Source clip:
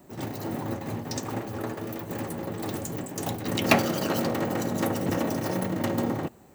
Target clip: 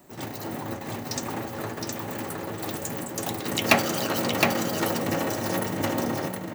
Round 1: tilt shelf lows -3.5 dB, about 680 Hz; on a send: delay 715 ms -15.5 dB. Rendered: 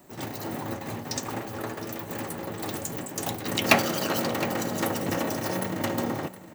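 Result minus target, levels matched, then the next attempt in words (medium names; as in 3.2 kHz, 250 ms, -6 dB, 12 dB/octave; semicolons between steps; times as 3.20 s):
echo-to-direct -12 dB
tilt shelf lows -3.5 dB, about 680 Hz; on a send: delay 715 ms -3.5 dB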